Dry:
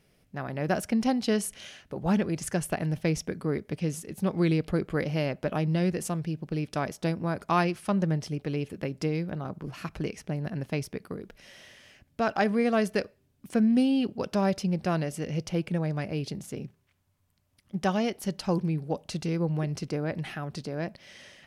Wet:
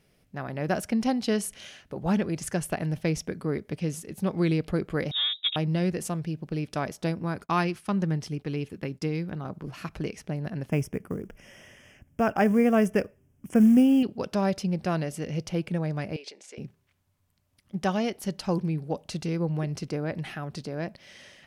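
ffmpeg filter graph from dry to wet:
-filter_complex "[0:a]asettb=1/sr,asplit=3[a][b][c];[a]atrim=end=5.114[d];[b]atrim=start=5.11:end=5.56,asetpts=PTS-STARTPTS,afade=t=in:d=0.004:c=qsin,afade=t=out:st=0.446:d=0.004:c=qsin,aecho=1:1:3.7:0.88,atrim=end_sample=19845,adynamicsmooth=sensitivity=1:basefreq=620,lowpass=f=3.3k:t=q:w=0.5098,lowpass=f=3.3k:t=q:w=0.6013,lowpass=f=3.3k:t=q:w=0.9,lowpass=f=3.3k:t=q:w=2.563,afreqshift=-3900[e];[c]atrim=start=5.556[f];[d][e]acrossfade=d=0.004:c1=hsin:c2=qsin[g];[g][f]acrossfade=d=0.004:c1=qsin:c2=hsin,asettb=1/sr,asplit=3[h][i][j];[h]atrim=end=7.204[k];[i]atrim=start=7.2:end=9.44,asetpts=PTS-STARTPTS,afade=t=in:d=0.004:c=qsin,afade=t=out:st=2.236:d=0.004:c=qsin,agate=range=-33dB:threshold=-43dB:ratio=3:release=100:detection=peak,equalizer=f=600:t=o:w=0.48:g=-6[l];[j]atrim=start=9.436[m];[k][l]acrossfade=d=0.004:c1=hsin:c2=qsin[n];[n][m]acrossfade=d=0.004:c1=qsin:c2=hsin,asettb=1/sr,asplit=3[o][p][q];[o]atrim=end=10.694[r];[p]atrim=start=10.69:end=14.03,asetpts=PTS-STARTPTS,afade=t=in:d=0.004:c=qsin,afade=t=out:st=3.336:d=0.004:c=qsin,lowshelf=f=390:g=6.5,acrusher=bits=8:mode=log:mix=0:aa=0.000001,asuperstop=centerf=4100:order=4:qfactor=1.9[s];[q]atrim=start=14.026[t];[r][s]acrossfade=d=0.004:c1=hsin:c2=qsin[u];[u][t]acrossfade=d=0.004:c1=qsin:c2=hsin,asettb=1/sr,asplit=3[v][w][x];[v]atrim=end=16.164[y];[w]atrim=start=16.16:end=16.58,asetpts=PTS-STARTPTS,afade=t=in:d=0.004:c=qsin,afade=t=out:st=0.416:d=0.004:c=qsin,acompressor=threshold=-33dB:ratio=2.5:attack=3.2:release=140:knee=1:detection=peak,aeval=exprs='(mod(20*val(0)+1,2)-1)/20':c=same,highpass=f=440:w=0.5412,highpass=f=440:w=1.3066,equalizer=f=690:t=q:w=4:g=-4,equalizer=f=1.2k:t=q:w=4:g=-8,equalizer=f=2.3k:t=q:w=4:g=6,lowpass=f=8k:w=0.5412,lowpass=f=8k:w=1.3066[z];[x]atrim=start=16.576[aa];[y][z]acrossfade=d=0.004:c1=hsin:c2=qsin[ab];[ab][aa]acrossfade=d=0.004:c1=qsin:c2=hsin"

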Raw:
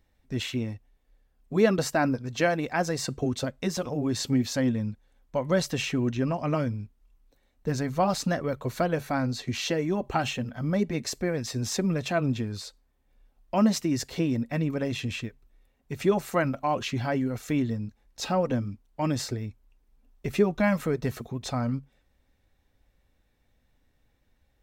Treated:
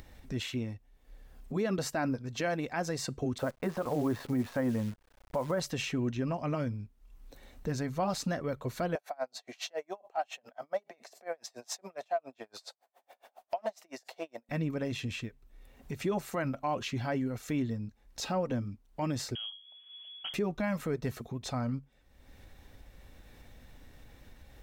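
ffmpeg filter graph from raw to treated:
-filter_complex "[0:a]asettb=1/sr,asplit=3[a][b][c];[a]atrim=end=3.384[d];[b]atrim=start=3.38:end=5.6,asetpts=PTS-STARTPTS,afade=t=in:d=0.004:c=qsin,afade=t=out:st=2.216:d=0.004:c=qsin,lowpass=1.6k,equalizer=f=1.1k:t=o:w=2.9:g=9.5,acrusher=bits=8:dc=4:mix=0:aa=0.000001[e];[c]atrim=start=5.596[f];[d][e]acrossfade=d=0.004:c1=hsin:c2=qsin[g];[g][f]acrossfade=d=0.004:c1=qsin:c2=hsin,asettb=1/sr,asplit=3[h][i][j];[h]atrim=end=8.954[k];[i]atrim=start=8.95:end=14.49,asetpts=PTS-STARTPTS,afade=t=in:d=0.004:c=qsin,afade=t=out:st=5.536:d=0.004:c=qsin,volume=16.5dB,asoftclip=hard,volume=-16.5dB,highpass=f=680:t=q:w=5.2,aeval=exprs='val(0)*pow(10,-37*(0.5-0.5*cos(2*PI*7.2*n/s))/20)':c=same[l];[j]atrim=start=14.486[m];[k][l]acrossfade=d=0.004:c1=hsin:c2=qsin[n];[n][m]acrossfade=d=0.004:c1=qsin:c2=hsin,asettb=1/sr,asplit=3[o][p][q];[o]atrim=end=19.354[r];[p]atrim=start=19.35:end=20.34,asetpts=PTS-STARTPTS,afade=t=in:d=0.004:c=qsin,afade=t=out:st=0.986:d=0.004:c=qsin,bandreject=f=50:t=h:w=6,bandreject=f=100:t=h:w=6,bandreject=f=150:t=h:w=6,bandreject=f=200:t=h:w=6,bandreject=f=250:t=h:w=6,bandreject=f=300:t=h:w=6,bandreject=f=350:t=h:w=6,bandreject=f=400:t=h:w=6,bandreject=f=450:t=h:w=6,asoftclip=type=hard:threshold=-31.5dB,lowpass=f=2.9k:t=q:w=0.5098,lowpass=f=2.9k:t=q:w=0.6013,lowpass=f=2.9k:t=q:w=0.9,lowpass=f=2.9k:t=q:w=2.563,afreqshift=-3400[s];[q]atrim=start=20.336[t];[r][s]acrossfade=d=0.004:c1=hsin:c2=qsin[u];[u][t]acrossfade=d=0.004:c1=qsin:c2=hsin,alimiter=limit=-17.5dB:level=0:latency=1,acompressor=mode=upward:threshold=-30dB:ratio=2.5,volume=-5dB"

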